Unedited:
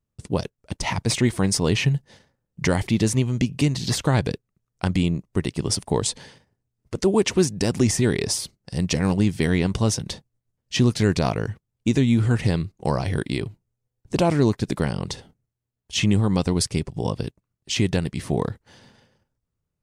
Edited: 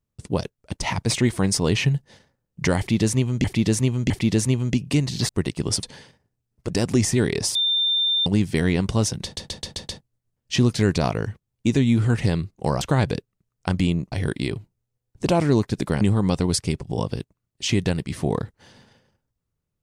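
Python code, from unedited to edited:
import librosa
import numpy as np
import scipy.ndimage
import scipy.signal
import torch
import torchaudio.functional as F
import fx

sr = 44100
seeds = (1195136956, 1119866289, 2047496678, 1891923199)

y = fx.edit(x, sr, fx.repeat(start_s=2.78, length_s=0.66, count=3),
    fx.move(start_s=3.97, length_s=1.31, to_s=13.02),
    fx.cut(start_s=5.82, length_s=0.28),
    fx.cut(start_s=6.97, length_s=0.59),
    fx.bleep(start_s=8.41, length_s=0.71, hz=3590.0, db=-18.0),
    fx.stutter(start_s=10.1, slice_s=0.13, count=6),
    fx.cut(start_s=14.91, length_s=1.17), tone=tone)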